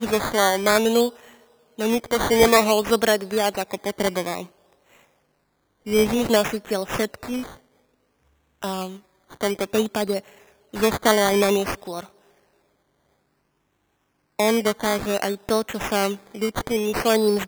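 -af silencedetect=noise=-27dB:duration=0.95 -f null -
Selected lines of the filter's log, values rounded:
silence_start: 4.42
silence_end: 5.87 | silence_duration: 1.45
silence_start: 7.43
silence_end: 8.63 | silence_duration: 1.19
silence_start: 12.01
silence_end: 14.39 | silence_duration: 2.39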